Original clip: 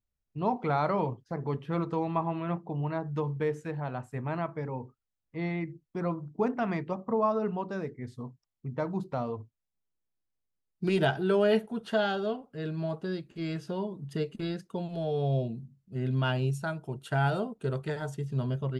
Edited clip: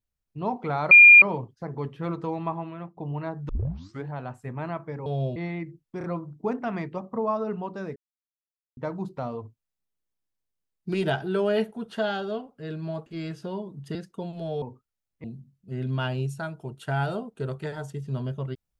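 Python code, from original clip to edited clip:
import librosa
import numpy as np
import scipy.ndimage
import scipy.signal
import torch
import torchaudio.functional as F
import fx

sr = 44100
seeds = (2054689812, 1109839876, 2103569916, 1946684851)

y = fx.edit(x, sr, fx.insert_tone(at_s=0.91, length_s=0.31, hz=2410.0, db=-7.0),
    fx.fade_out_to(start_s=2.15, length_s=0.51, floor_db=-12.0),
    fx.tape_start(start_s=3.18, length_s=0.58),
    fx.swap(start_s=4.75, length_s=0.62, other_s=15.18, other_length_s=0.3),
    fx.stutter(start_s=5.99, slice_s=0.03, count=3),
    fx.silence(start_s=7.91, length_s=0.81),
    fx.cut(start_s=13.01, length_s=0.3),
    fx.cut(start_s=14.2, length_s=0.31), tone=tone)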